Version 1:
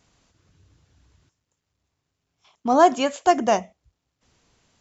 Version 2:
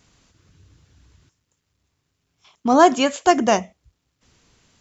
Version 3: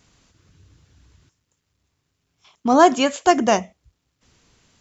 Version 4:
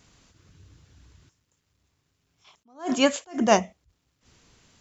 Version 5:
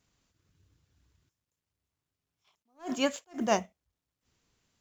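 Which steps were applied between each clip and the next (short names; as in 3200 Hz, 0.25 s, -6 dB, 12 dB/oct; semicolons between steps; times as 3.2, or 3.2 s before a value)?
bell 710 Hz -4.5 dB 1.1 oct; gain +5.5 dB
nothing audible
attack slew limiter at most 200 dB/s
G.711 law mismatch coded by A; gain -7.5 dB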